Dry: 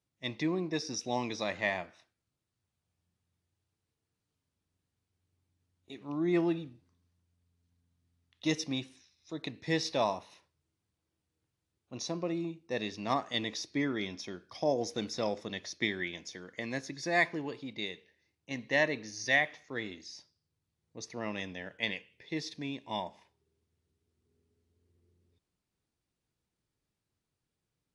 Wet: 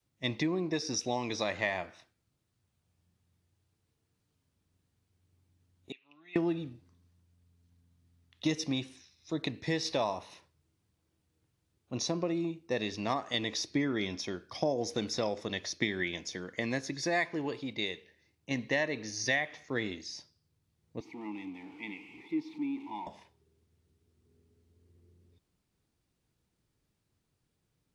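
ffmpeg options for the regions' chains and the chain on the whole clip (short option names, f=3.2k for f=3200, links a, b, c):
-filter_complex "[0:a]asettb=1/sr,asplit=3[a][b][c];[a]atrim=end=5.924[d];[b]atrim=start=5.92:end=6.36,asetpts=PTS-STARTPTS,afade=t=in:d=0.004:c=qsin,afade=t=out:st=0.436:d=0.004:c=qsin,bandpass=f=2.7k:t=q:w=7.9,aecho=1:1:7.3:0.5,atrim=end_sample=19404[e];[c]atrim=start=6.356[f];[d][e]acrossfade=d=0.004:c1=hsin:c2=qsin[g];[g][f]acrossfade=d=0.004:c1=qsin:c2=hsin,asettb=1/sr,asplit=3[h][i][j];[h]atrim=end=21.004[k];[i]atrim=start=21:end=23.07,asetpts=PTS-STARTPTS,afade=t=in:d=0.004:c=qsin,afade=t=out:st=2.066:d=0.004:c=qsin,aeval=exprs='val(0)+0.5*0.0133*sgn(val(0))':c=same,asplit=3[l][m][n];[l]bandpass=f=300:t=q:w=8,volume=0dB[o];[m]bandpass=f=870:t=q:w=8,volume=-6dB[p];[n]bandpass=f=2.24k:t=q:w=8,volume=-9dB[q];[o][p][q]amix=inputs=3:normalize=0[r];[j]atrim=start=23.066[s];[k][r]acrossfade=d=0.004:c1=hsin:c2=qsin[t];[t][s]acrossfade=d=0.004:c1=qsin:c2=hsin,lowshelf=f=360:g=4,acompressor=threshold=-31dB:ratio=5,adynamicequalizer=threshold=0.00251:dfrequency=180:dqfactor=1:tfrequency=180:tqfactor=1:attack=5:release=100:ratio=0.375:range=3:mode=cutabove:tftype=bell,volume=4.5dB"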